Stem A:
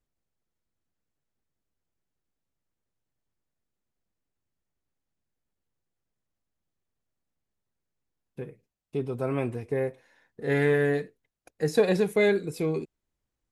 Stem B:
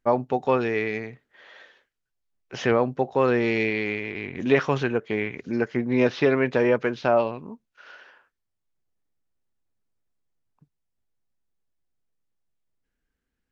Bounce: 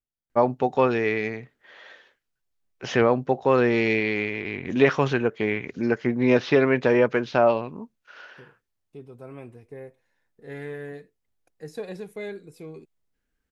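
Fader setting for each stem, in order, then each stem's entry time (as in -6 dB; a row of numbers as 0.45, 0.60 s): -12.5, +1.5 dB; 0.00, 0.30 s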